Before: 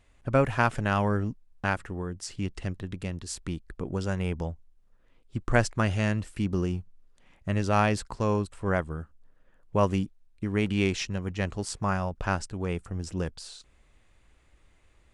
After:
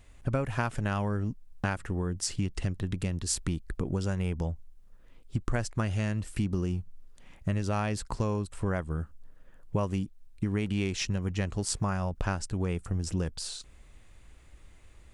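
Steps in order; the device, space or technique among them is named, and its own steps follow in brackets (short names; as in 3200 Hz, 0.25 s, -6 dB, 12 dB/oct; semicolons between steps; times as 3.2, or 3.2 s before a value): ASMR close-microphone chain (low shelf 220 Hz +5.5 dB; compressor 6:1, threshold -29 dBFS, peak gain reduction 14.5 dB; high shelf 6200 Hz +7 dB); gain +3 dB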